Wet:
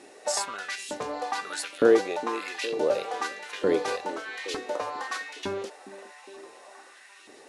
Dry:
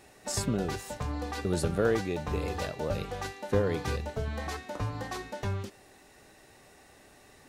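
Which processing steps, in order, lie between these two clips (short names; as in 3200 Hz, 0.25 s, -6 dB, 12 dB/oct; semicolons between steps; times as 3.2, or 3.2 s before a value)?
elliptic low-pass 11000 Hz, stop band 40 dB; LFO high-pass saw up 1.1 Hz 270–3200 Hz; delay with a stepping band-pass 0.409 s, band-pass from 270 Hz, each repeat 0.7 oct, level -10.5 dB; gain +4.5 dB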